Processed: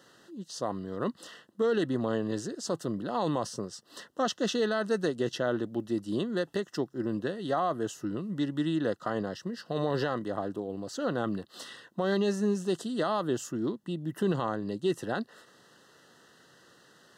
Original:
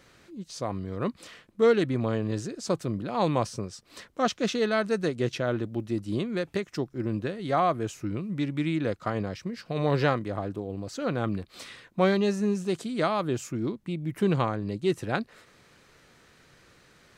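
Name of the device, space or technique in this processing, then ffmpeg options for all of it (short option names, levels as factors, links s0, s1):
PA system with an anti-feedback notch: -af "highpass=180,asuperstop=centerf=2300:order=12:qfactor=3.6,alimiter=limit=0.119:level=0:latency=1:release=26"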